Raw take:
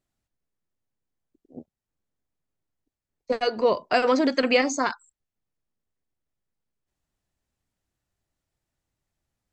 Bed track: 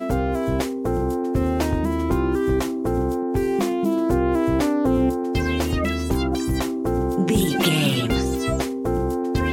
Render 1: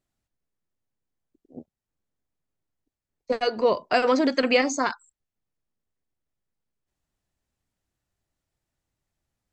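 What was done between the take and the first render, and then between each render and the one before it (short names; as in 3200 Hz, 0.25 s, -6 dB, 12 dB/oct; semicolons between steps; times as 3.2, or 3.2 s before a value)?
nothing audible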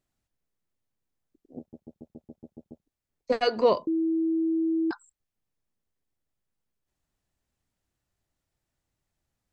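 1.59 stutter in place 0.14 s, 9 plays; 3.87–4.91 bleep 325 Hz -22.5 dBFS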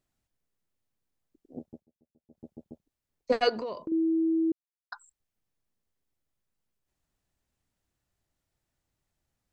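1.74–2.41 dip -22.5 dB, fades 0.13 s; 3.49–3.92 compressor 8:1, threshold -32 dBFS; 4.52–4.92 mute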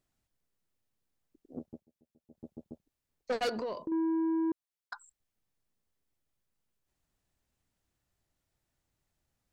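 soft clip -27 dBFS, distortion -11 dB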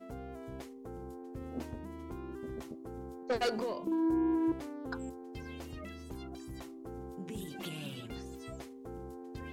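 add bed track -22.5 dB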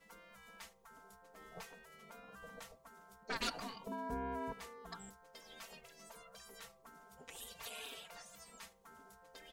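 spectral gate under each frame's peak -15 dB weak; comb 4.4 ms, depth 69%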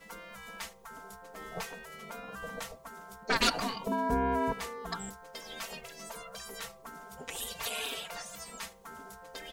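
gain +12 dB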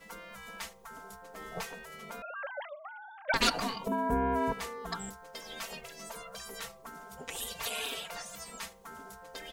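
2.22–3.34 sine-wave speech; 3.88–4.36 bell 4700 Hz -11.5 dB 1 oct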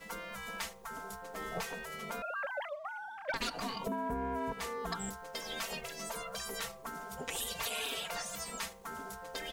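compressor 6:1, threshold -37 dBFS, peak gain reduction 14.5 dB; sample leveller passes 1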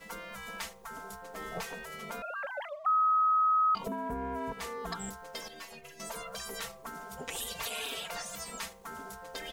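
2.86–3.75 bleep 1270 Hz -22.5 dBFS; 5.48–6 metallic resonator 72 Hz, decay 0.27 s, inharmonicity 0.008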